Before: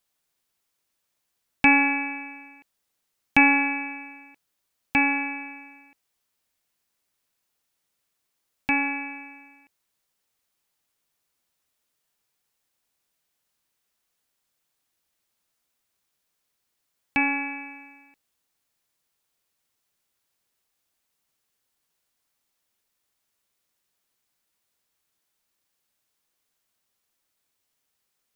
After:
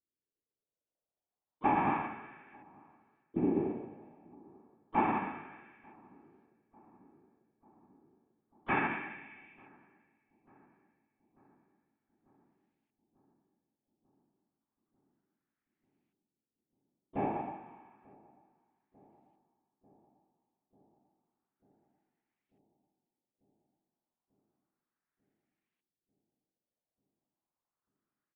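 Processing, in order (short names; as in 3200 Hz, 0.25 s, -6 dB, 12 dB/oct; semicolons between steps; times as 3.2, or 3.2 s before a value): limiter -15 dBFS, peak gain reduction 11 dB; whisperiser; harmoniser -12 st -17 dB, -5 st -12 dB, +5 st -12 dB; LFO low-pass saw up 0.31 Hz 320–2500 Hz; on a send: darkening echo 0.893 s, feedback 77%, low-pass 1100 Hz, level -20 dB; on the sum: upward expander 1.5:1, over -36 dBFS; gain -4.5 dB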